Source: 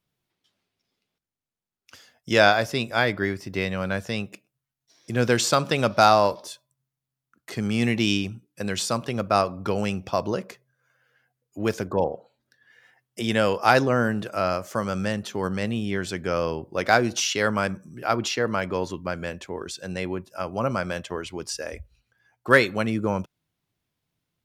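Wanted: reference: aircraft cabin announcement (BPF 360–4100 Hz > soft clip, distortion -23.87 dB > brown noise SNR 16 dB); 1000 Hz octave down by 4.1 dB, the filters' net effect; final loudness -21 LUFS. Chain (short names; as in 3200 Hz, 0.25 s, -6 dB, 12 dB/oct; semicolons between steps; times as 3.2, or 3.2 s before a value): BPF 360–4100 Hz; bell 1000 Hz -6 dB; soft clip -7.5 dBFS; brown noise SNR 16 dB; gain +7.5 dB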